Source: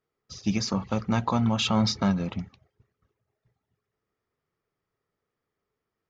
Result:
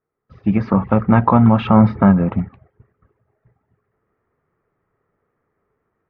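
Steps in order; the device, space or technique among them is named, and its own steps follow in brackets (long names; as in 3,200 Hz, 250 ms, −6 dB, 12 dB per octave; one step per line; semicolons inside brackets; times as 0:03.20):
0:01.67–0:02.39: low-pass filter 2,300 Hz 6 dB per octave
action camera in a waterproof case (low-pass filter 1,900 Hz 24 dB per octave; automatic gain control gain up to 11 dB; level +2.5 dB; AAC 64 kbit/s 44,100 Hz)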